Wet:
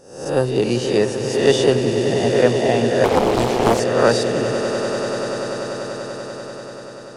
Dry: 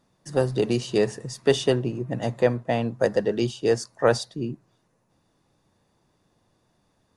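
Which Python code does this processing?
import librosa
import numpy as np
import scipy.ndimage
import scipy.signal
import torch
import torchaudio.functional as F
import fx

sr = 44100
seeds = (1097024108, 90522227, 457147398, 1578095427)

y = fx.spec_swells(x, sr, rise_s=0.63)
y = fx.echo_swell(y, sr, ms=97, loudest=8, wet_db=-13)
y = fx.doppler_dist(y, sr, depth_ms=0.91, at=(3.04, 3.8))
y = F.gain(torch.from_numpy(y), 3.0).numpy()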